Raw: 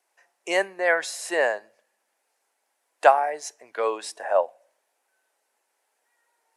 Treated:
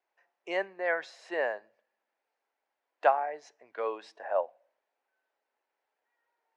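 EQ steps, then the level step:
high-frequency loss of the air 220 metres
−7.0 dB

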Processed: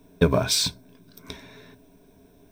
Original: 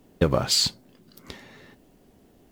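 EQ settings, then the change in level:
EQ curve with evenly spaced ripples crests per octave 1.6, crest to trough 12 dB
0.0 dB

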